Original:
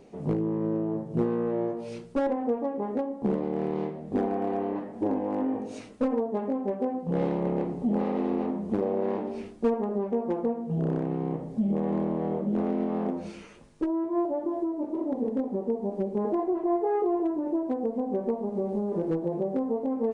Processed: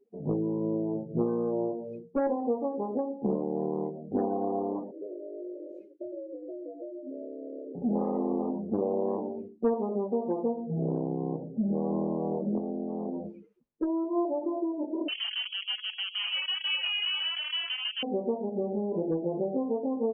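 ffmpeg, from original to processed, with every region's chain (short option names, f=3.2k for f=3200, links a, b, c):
-filter_complex "[0:a]asettb=1/sr,asplit=3[a][b][c];[a]atrim=end=4.914[d];[b]atrim=start=4.91:end=7.75,asetpts=PTS-STARTPTS,afade=t=in:d=0.004:c=qsin,afade=t=out:st=2.836:d=0.004:c=qsin,acompressor=threshold=-36dB:ratio=4:attack=3.2:release=140:knee=1:detection=peak,afreqshift=95,asuperstop=centerf=960:order=12:qfactor=1.3[e];[c]atrim=start=7.746[f];[d][e]acrossfade=d=0.004:c1=hsin:c2=qsin[g];[g][f]acrossfade=d=0.004:c1=qsin:c2=hsin,asettb=1/sr,asplit=3[h][i][j];[h]atrim=end=12.584[k];[i]atrim=start=12.58:end=13.28,asetpts=PTS-STARTPTS,afade=t=in:d=0.004:c=qsin,afade=t=out:st=0.696:d=0.004:c=qsin,acompressor=threshold=-30dB:ratio=5:attack=3.2:release=140:knee=1:detection=peak,equalizer=f=300:w=0.67:g=2.5[l];[j]atrim=start=13.276[m];[k][l]acrossfade=d=0.004:c1=hsin:c2=qsin[n];[n][m]acrossfade=d=0.004:c1=qsin:c2=hsin,asettb=1/sr,asplit=3[o][p][q];[o]atrim=end=15.084[r];[p]atrim=start=15.08:end=18.03,asetpts=PTS-STARTPTS,afade=t=in:d=0.004:c=qsin,afade=t=out:st=2.946:d=0.004:c=qsin,lowshelf=f=170:g=-5.5,acrusher=bits=6:dc=4:mix=0:aa=0.000001,lowpass=f=2.8k:t=q:w=0.5098,lowpass=f=2.8k:t=q:w=0.6013,lowpass=f=2.8k:t=q:w=0.9,lowpass=f=2.8k:t=q:w=2.563,afreqshift=-3300[s];[q]atrim=start=18.026[t];[r][s]acrossfade=d=0.004:c1=hsin:c2=qsin[u];[u][t]acrossfade=d=0.004:c1=qsin:c2=hsin,asettb=1/sr,asplit=3[v][w][x];[v]atrim=end=18.824[y];[w]atrim=start=18.82:end=19.44,asetpts=PTS-STARTPTS,afade=t=in:d=0.004:c=qsin,afade=t=out:st=0.616:d=0.004:c=qsin,highshelf=f=3k:g=7,bandreject=f=1.3k:w=5.6[z];[x]atrim=start=19.436[aa];[y][z]acrossfade=d=0.004:c1=hsin:c2=qsin[ab];[ab][aa]acrossfade=d=0.004:c1=qsin:c2=hsin,lowshelf=f=180:g=-5.5,afftdn=nr=32:nf=-38,highshelf=f=2.9k:g=-8.5"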